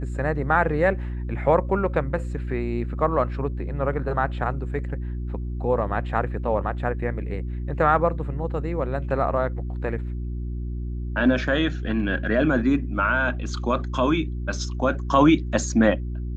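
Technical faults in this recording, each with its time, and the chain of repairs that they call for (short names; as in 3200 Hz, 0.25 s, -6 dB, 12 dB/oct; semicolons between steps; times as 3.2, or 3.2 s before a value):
hum 60 Hz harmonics 6 -29 dBFS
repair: de-hum 60 Hz, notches 6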